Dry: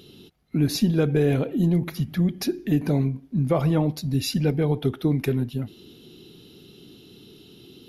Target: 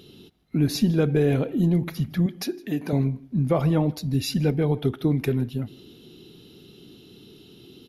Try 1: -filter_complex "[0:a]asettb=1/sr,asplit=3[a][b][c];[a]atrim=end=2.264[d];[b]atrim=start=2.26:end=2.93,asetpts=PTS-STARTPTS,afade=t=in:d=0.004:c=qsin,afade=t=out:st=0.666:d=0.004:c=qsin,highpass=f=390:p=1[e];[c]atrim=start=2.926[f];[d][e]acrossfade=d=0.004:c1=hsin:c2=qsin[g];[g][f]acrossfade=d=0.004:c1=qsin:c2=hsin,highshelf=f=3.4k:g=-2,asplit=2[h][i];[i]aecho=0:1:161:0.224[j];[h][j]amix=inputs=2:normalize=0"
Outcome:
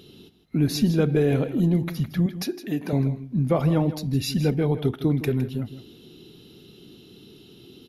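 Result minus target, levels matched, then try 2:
echo-to-direct +11.5 dB
-filter_complex "[0:a]asettb=1/sr,asplit=3[a][b][c];[a]atrim=end=2.264[d];[b]atrim=start=2.26:end=2.93,asetpts=PTS-STARTPTS,afade=t=in:d=0.004:c=qsin,afade=t=out:st=0.666:d=0.004:c=qsin,highpass=f=390:p=1[e];[c]atrim=start=2.926[f];[d][e]acrossfade=d=0.004:c1=hsin:c2=qsin[g];[g][f]acrossfade=d=0.004:c1=qsin:c2=hsin,highshelf=f=3.4k:g=-2,asplit=2[h][i];[i]aecho=0:1:161:0.0596[j];[h][j]amix=inputs=2:normalize=0"

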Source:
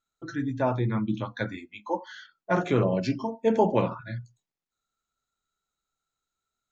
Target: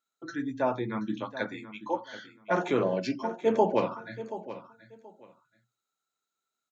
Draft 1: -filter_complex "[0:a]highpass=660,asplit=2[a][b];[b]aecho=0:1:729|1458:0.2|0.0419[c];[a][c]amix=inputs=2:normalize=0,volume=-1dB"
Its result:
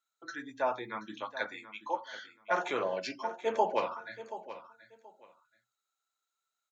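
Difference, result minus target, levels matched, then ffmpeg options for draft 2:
250 Hz band -8.5 dB
-filter_complex "[0:a]highpass=240,asplit=2[a][b];[b]aecho=0:1:729|1458:0.2|0.0419[c];[a][c]amix=inputs=2:normalize=0,volume=-1dB"

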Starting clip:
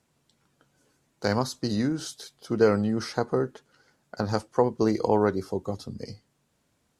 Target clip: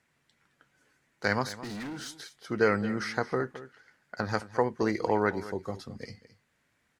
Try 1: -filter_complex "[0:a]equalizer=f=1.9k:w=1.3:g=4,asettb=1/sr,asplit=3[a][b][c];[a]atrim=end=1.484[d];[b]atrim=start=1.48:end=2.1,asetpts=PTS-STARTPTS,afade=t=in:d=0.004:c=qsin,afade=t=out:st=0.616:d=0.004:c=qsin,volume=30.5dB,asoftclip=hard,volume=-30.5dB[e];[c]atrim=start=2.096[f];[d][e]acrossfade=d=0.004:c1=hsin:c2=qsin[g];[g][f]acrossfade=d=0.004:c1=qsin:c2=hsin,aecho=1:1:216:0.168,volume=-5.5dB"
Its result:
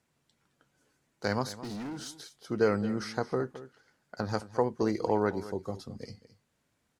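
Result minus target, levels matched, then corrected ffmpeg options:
2000 Hz band -6.5 dB
-filter_complex "[0:a]equalizer=f=1.9k:w=1.3:g=14,asettb=1/sr,asplit=3[a][b][c];[a]atrim=end=1.484[d];[b]atrim=start=1.48:end=2.1,asetpts=PTS-STARTPTS,afade=t=in:d=0.004:c=qsin,afade=t=out:st=0.616:d=0.004:c=qsin,volume=30.5dB,asoftclip=hard,volume=-30.5dB[e];[c]atrim=start=2.096[f];[d][e]acrossfade=d=0.004:c1=hsin:c2=qsin[g];[g][f]acrossfade=d=0.004:c1=qsin:c2=hsin,aecho=1:1:216:0.168,volume=-5.5dB"

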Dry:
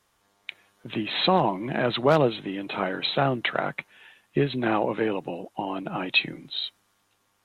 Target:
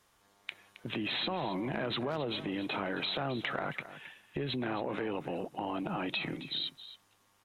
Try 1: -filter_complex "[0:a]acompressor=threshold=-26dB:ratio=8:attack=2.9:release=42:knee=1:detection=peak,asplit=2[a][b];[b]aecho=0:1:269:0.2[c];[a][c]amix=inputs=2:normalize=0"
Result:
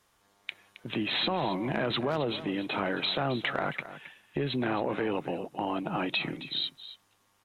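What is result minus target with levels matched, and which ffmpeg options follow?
compressor: peak gain reduction -5.5 dB
-filter_complex "[0:a]acompressor=threshold=-32dB:ratio=8:attack=2.9:release=42:knee=1:detection=peak,asplit=2[a][b];[b]aecho=0:1:269:0.2[c];[a][c]amix=inputs=2:normalize=0"

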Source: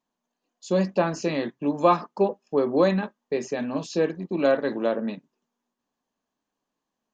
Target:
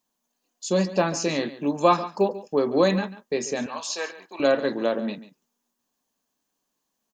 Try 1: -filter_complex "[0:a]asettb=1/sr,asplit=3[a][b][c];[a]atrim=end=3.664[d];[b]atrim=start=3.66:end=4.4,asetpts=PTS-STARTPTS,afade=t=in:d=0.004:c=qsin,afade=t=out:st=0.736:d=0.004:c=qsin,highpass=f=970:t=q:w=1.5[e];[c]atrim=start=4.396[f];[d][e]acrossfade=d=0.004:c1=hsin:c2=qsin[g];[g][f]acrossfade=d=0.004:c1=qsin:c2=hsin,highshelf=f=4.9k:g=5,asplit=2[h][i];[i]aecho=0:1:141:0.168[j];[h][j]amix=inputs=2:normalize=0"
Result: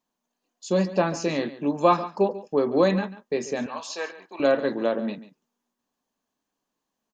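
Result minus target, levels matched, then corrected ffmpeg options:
8000 Hz band -6.5 dB
-filter_complex "[0:a]asettb=1/sr,asplit=3[a][b][c];[a]atrim=end=3.664[d];[b]atrim=start=3.66:end=4.4,asetpts=PTS-STARTPTS,afade=t=in:d=0.004:c=qsin,afade=t=out:st=0.736:d=0.004:c=qsin,highpass=f=970:t=q:w=1.5[e];[c]atrim=start=4.396[f];[d][e]acrossfade=d=0.004:c1=hsin:c2=qsin[g];[g][f]acrossfade=d=0.004:c1=qsin:c2=hsin,highshelf=f=4.9k:g=15.5,asplit=2[h][i];[i]aecho=0:1:141:0.168[j];[h][j]amix=inputs=2:normalize=0"

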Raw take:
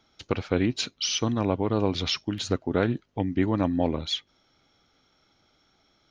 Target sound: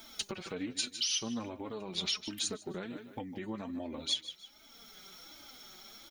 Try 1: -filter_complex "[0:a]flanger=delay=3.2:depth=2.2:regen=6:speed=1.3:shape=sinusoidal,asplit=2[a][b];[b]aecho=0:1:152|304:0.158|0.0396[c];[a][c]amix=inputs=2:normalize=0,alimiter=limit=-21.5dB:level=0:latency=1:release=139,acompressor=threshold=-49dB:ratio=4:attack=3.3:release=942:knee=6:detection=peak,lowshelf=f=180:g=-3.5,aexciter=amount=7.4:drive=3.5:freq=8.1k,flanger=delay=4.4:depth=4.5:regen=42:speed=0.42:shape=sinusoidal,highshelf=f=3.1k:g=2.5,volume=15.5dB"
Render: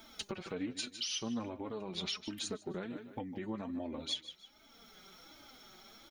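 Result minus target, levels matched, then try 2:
8000 Hz band -3.5 dB
-filter_complex "[0:a]flanger=delay=3.2:depth=2.2:regen=6:speed=1.3:shape=sinusoidal,asplit=2[a][b];[b]aecho=0:1:152|304:0.158|0.0396[c];[a][c]amix=inputs=2:normalize=0,alimiter=limit=-21.5dB:level=0:latency=1:release=139,acompressor=threshold=-49dB:ratio=4:attack=3.3:release=942:knee=6:detection=peak,lowshelf=f=180:g=-3.5,aexciter=amount=7.4:drive=3.5:freq=8.1k,flanger=delay=4.4:depth=4.5:regen=42:speed=0.42:shape=sinusoidal,highshelf=f=3.1k:g=11,volume=15.5dB"

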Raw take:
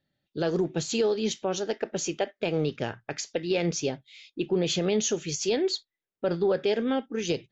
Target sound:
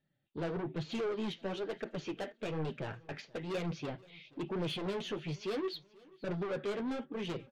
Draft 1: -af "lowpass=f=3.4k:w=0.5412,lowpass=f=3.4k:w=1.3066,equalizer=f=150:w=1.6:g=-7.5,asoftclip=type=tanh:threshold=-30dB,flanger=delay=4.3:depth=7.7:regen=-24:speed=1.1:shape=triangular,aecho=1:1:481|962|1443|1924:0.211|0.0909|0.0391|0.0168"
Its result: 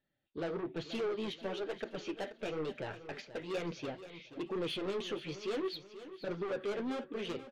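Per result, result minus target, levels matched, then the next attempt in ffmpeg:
echo-to-direct +10.5 dB; 125 Hz band -6.5 dB
-af "lowpass=f=3.4k:w=0.5412,lowpass=f=3.4k:w=1.3066,equalizer=f=150:w=1.6:g=-7.5,asoftclip=type=tanh:threshold=-30dB,flanger=delay=4.3:depth=7.7:regen=-24:speed=1.1:shape=triangular,aecho=1:1:481|962|1443:0.0631|0.0271|0.0117"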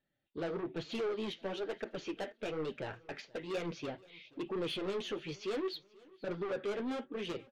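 125 Hz band -7.0 dB
-af "lowpass=f=3.4k:w=0.5412,lowpass=f=3.4k:w=1.3066,equalizer=f=150:w=1.6:g=3,asoftclip=type=tanh:threshold=-30dB,flanger=delay=4.3:depth=7.7:regen=-24:speed=1.1:shape=triangular,aecho=1:1:481|962|1443:0.0631|0.0271|0.0117"

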